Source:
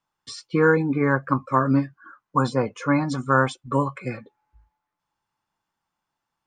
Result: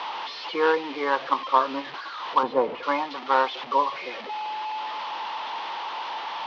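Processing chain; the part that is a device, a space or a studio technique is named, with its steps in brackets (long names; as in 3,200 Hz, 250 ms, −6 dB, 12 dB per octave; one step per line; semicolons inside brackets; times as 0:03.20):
digital answering machine (band-pass filter 380–3,400 Hz; linear delta modulator 32 kbit/s, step −29 dBFS; loudspeaker in its box 400–4,400 Hz, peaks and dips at 930 Hz +8 dB, 1,500 Hz −5 dB, 3,100 Hz +4 dB)
0:02.43–0:02.83: spectral tilt −4.5 dB per octave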